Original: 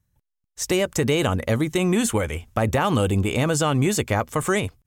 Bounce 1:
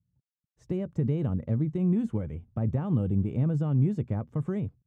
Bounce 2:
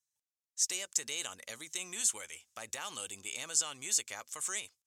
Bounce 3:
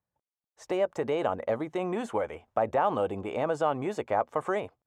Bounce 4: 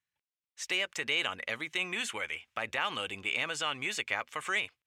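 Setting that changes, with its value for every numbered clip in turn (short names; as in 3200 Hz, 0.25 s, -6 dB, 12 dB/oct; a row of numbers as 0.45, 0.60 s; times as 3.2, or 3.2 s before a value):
band-pass, frequency: 150, 6700, 720, 2500 Hz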